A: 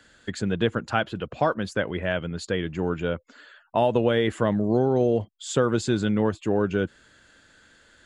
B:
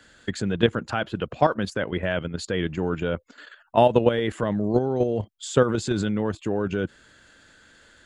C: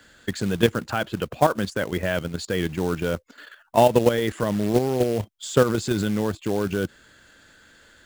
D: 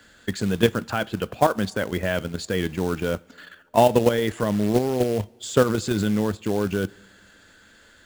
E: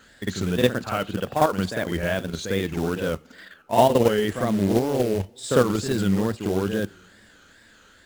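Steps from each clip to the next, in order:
output level in coarse steps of 10 dB; level +5.5 dB
floating-point word with a short mantissa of 2 bits; level +1 dB
coupled-rooms reverb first 0.28 s, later 2.4 s, from −19 dB, DRR 17 dB
tape wow and flutter 150 cents; backwards echo 52 ms −6.5 dB; level −1 dB

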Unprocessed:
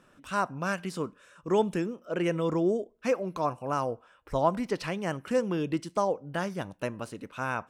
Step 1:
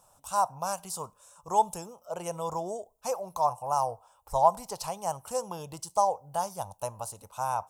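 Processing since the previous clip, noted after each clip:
drawn EQ curve 100 Hz 0 dB, 300 Hz −21 dB, 850 Hz +10 dB, 1,800 Hz −19 dB, 6,900 Hz +10 dB, 12,000 Hz +15 dB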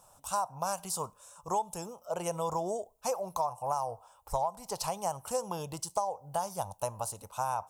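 downward compressor 16 to 1, threshold −29 dBFS, peak gain reduction 15.5 dB
level +2 dB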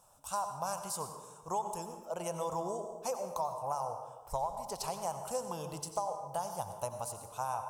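dense smooth reverb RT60 1.3 s, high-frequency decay 0.55×, pre-delay 75 ms, DRR 7 dB
level −4 dB

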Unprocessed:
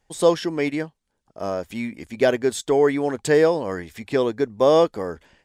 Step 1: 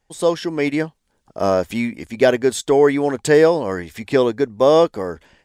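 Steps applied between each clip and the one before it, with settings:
automatic gain control gain up to 12 dB
level −1 dB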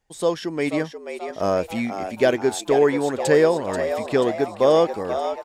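echo with shifted repeats 485 ms, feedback 54%, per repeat +100 Hz, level −9 dB
level −4 dB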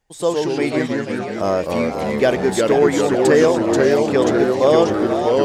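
delay with pitch and tempo change per echo 86 ms, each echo −2 semitones, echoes 3
level +2 dB

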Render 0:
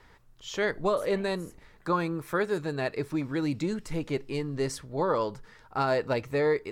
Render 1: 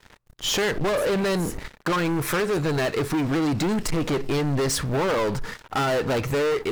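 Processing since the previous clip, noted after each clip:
noise gate −51 dBFS, range −7 dB
downward compressor 3 to 1, threshold −33 dBFS, peak gain reduction 9 dB
leveller curve on the samples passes 5
level +2 dB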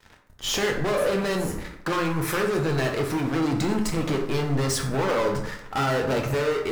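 dense smooth reverb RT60 0.79 s, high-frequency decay 0.55×, DRR 1.5 dB
level −3 dB

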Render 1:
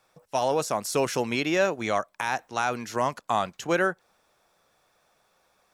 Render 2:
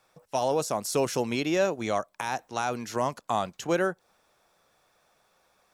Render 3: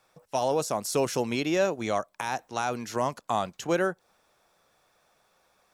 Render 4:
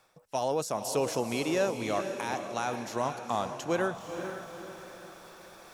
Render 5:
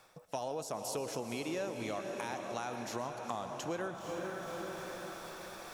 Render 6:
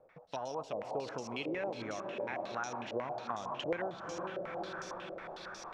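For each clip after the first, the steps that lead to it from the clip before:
dynamic equaliser 1,800 Hz, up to −6 dB, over −39 dBFS, Q 0.78
no processing that can be heard
reversed playback; upward compression, threshold −34 dBFS; reversed playback; feedback delay with all-pass diffusion 477 ms, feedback 47%, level −7.5 dB; level −3.5 dB
downward compressor 4 to 1, threshold −41 dBFS, peak gain reduction 14.5 dB; convolution reverb RT60 0.85 s, pre-delay 85 ms, DRR 12 dB; level +3.5 dB
low-pass on a step sequencer 11 Hz 540–5,800 Hz; level −3 dB

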